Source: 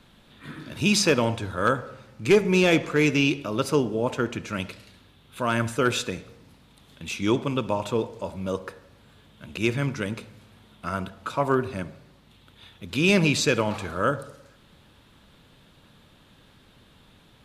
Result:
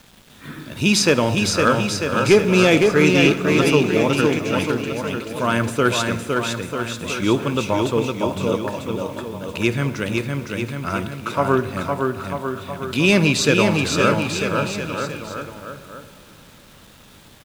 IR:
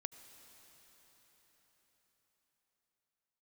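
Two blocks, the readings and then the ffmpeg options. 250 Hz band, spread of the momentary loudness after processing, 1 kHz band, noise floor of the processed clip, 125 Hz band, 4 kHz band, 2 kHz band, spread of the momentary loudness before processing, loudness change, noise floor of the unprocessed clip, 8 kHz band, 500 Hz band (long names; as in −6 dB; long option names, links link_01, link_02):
+6.5 dB, 13 LU, +6.5 dB, −47 dBFS, +6.5 dB, +6.5 dB, +6.5 dB, 18 LU, +5.5 dB, −56 dBFS, +6.5 dB, +6.5 dB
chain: -filter_complex "[0:a]aecho=1:1:510|943.5|1312|1625|1891:0.631|0.398|0.251|0.158|0.1,asplit=2[link_01][link_02];[1:a]atrim=start_sample=2205[link_03];[link_02][link_03]afir=irnorm=-1:irlink=0,volume=0dB[link_04];[link_01][link_04]amix=inputs=2:normalize=0,acrusher=bits=7:mix=0:aa=0.000001"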